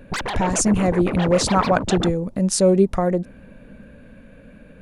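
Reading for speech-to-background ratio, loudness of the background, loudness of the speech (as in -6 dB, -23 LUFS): 7.5 dB, -27.0 LUFS, -19.5 LUFS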